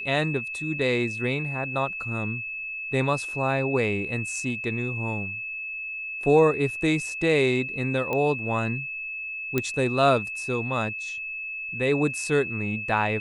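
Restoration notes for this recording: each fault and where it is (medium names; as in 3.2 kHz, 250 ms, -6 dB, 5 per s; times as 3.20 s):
whine 2.6 kHz -31 dBFS
8.13 s: pop -15 dBFS
9.58 s: pop -10 dBFS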